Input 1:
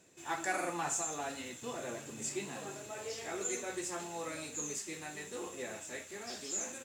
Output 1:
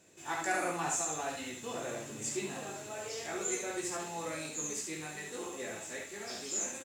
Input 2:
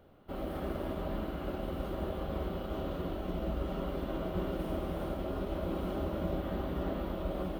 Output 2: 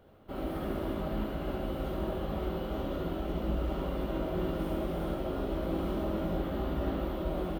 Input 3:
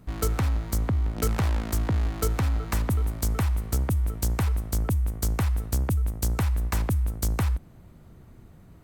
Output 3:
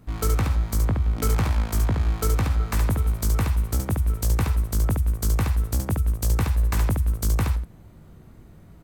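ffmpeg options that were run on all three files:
-af "aecho=1:1:19|71:0.501|0.631"

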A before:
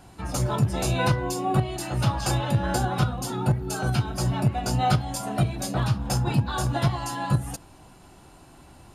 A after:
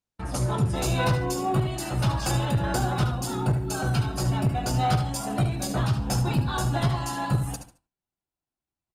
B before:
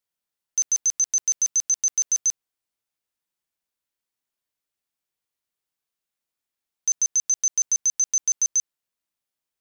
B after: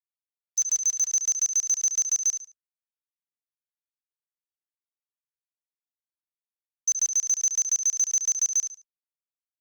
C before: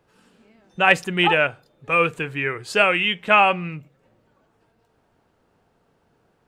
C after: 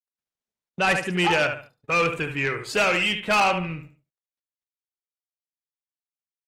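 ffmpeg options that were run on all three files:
-filter_complex "[0:a]agate=range=-45dB:threshold=-42dB:ratio=16:detection=peak,asplit=2[a][b];[b]aecho=0:1:72|144|216:0.335|0.0871|0.0226[c];[a][c]amix=inputs=2:normalize=0,asoftclip=type=tanh:threshold=-15dB" -ar 48000 -c:a libopus -b:a 24k

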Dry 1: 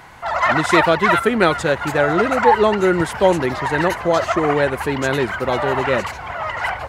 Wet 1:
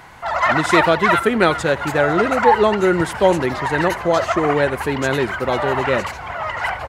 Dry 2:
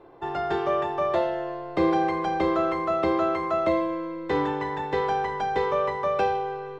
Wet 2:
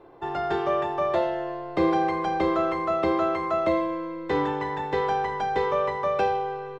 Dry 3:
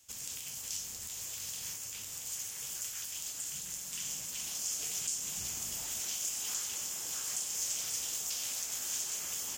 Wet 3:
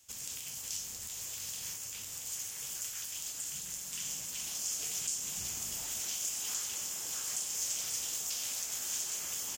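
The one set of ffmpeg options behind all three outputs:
-af "aecho=1:1:83:0.0891"

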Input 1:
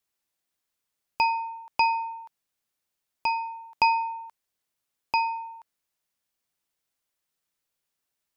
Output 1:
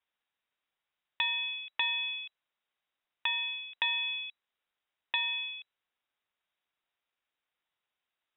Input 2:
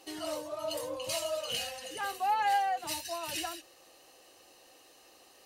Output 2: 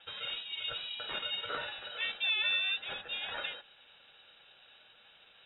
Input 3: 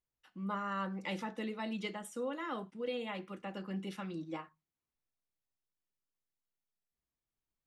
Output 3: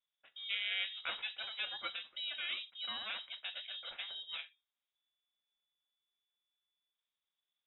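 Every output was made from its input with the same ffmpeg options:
-filter_complex "[0:a]acrossover=split=270|700[a][b][c];[a]acompressor=threshold=-57dB:ratio=4[d];[b]acompressor=threshold=-48dB:ratio=4[e];[c]acompressor=threshold=-31dB:ratio=4[f];[d][e][f]amix=inputs=3:normalize=0,aeval=exprs='val(0)*sin(2*PI*440*n/s)':c=same,asplit=2[g][h];[h]aeval=exprs='0.0596*(abs(mod(val(0)/0.0596+3,4)-2)-1)':c=same,volume=-4dB[i];[g][i]amix=inputs=2:normalize=0,lowpass=f=3.3k:t=q:w=0.5098,lowpass=f=3.3k:t=q:w=0.6013,lowpass=f=3.3k:t=q:w=0.9,lowpass=f=3.3k:t=q:w=2.563,afreqshift=-3900"

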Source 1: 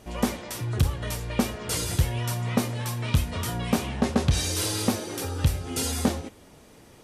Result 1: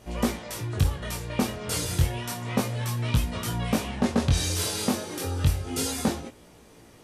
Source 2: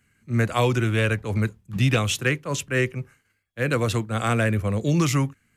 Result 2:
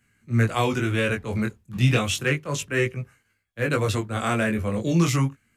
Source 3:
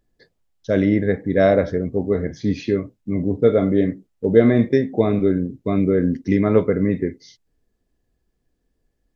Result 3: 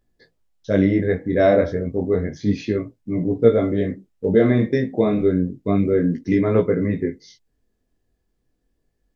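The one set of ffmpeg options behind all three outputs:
-af "flanger=delay=17:depth=6.9:speed=0.31,volume=2.5dB"

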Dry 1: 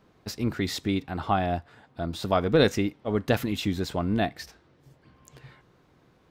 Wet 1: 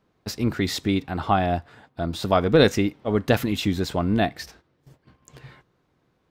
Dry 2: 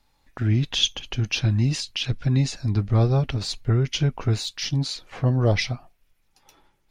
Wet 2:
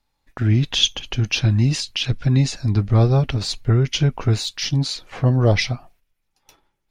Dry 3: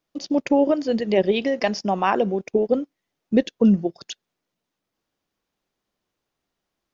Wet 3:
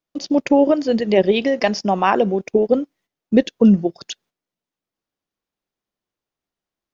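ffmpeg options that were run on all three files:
-af "agate=range=-11dB:threshold=-55dB:ratio=16:detection=peak,volume=4dB"

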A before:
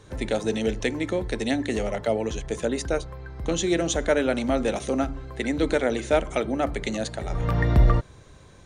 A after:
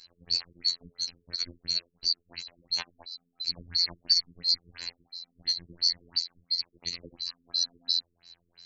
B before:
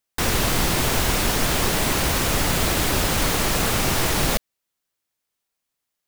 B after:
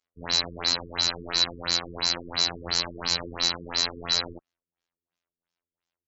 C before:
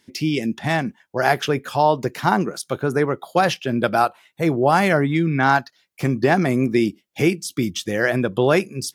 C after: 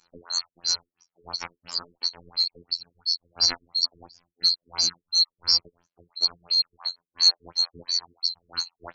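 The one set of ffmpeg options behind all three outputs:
-af "afftfilt=real='real(if(lt(b,736),b+184*(1-2*mod(floor(b/184),2)),b),0)':imag='imag(if(lt(b,736),b+184*(1-2*mod(floor(b/184),2)),b),0)':win_size=2048:overlap=0.75,afftfilt=real='hypot(re,im)*cos(PI*b)':imag='0':win_size=2048:overlap=0.75,afftfilt=real='re*lt(b*sr/1024,440*pow(7600/440,0.5+0.5*sin(2*PI*2.9*pts/sr)))':imag='im*lt(b*sr/1024,440*pow(7600/440,0.5+0.5*sin(2*PI*2.9*pts/sr)))':win_size=1024:overlap=0.75,volume=1.5dB"

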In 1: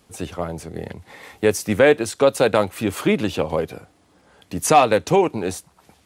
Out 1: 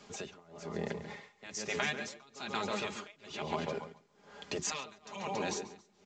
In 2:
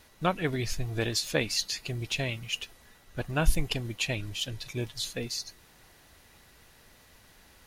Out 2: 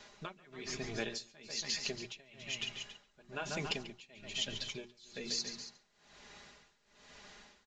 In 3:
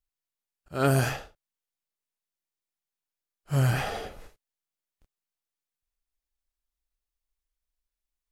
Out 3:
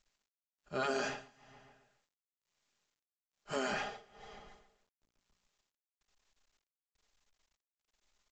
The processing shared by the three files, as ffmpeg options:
-filter_complex "[0:a]asplit=2[a][b];[b]adelay=139,lowpass=f=4.4k:p=1,volume=-11dB,asplit=2[c][d];[d]adelay=139,lowpass=f=4.4k:p=1,volume=0.36,asplit=2[e][f];[f]adelay=139,lowpass=f=4.4k:p=1,volume=0.36,asplit=2[g][h];[h]adelay=139,lowpass=f=4.4k:p=1,volume=0.36[i];[c][e][g][i]amix=inputs=4:normalize=0[j];[a][j]amix=inputs=2:normalize=0,acrossover=split=140|3000[k][l][m];[l]acompressor=threshold=-22dB:ratio=3[n];[k][n][m]amix=inputs=3:normalize=0,afftfilt=real='re*lt(hypot(re,im),0.282)':imag='im*lt(hypot(re,im),0.282)':win_size=1024:overlap=0.75,bandreject=f=60:t=h:w=6,bandreject=f=120:t=h:w=6,bandreject=f=180:t=h:w=6,bandreject=f=240:t=h:w=6,bandreject=f=300:t=h:w=6,bandreject=f=360:t=h:w=6,aecho=1:1:4.9:0.56,asplit=2[o][p];[p]aecho=0:1:279:0.224[q];[o][q]amix=inputs=2:normalize=0,acompressor=threshold=-38dB:ratio=2,tremolo=f=1.1:d=0.96,lowshelf=f=110:g=-11.5,volume=2.5dB" -ar 16000 -c:a pcm_mulaw

